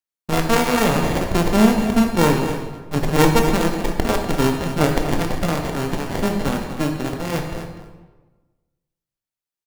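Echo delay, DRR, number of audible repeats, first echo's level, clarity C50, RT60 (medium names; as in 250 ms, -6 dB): 245 ms, 2.0 dB, 1, -11.5 dB, 4.0 dB, 1.2 s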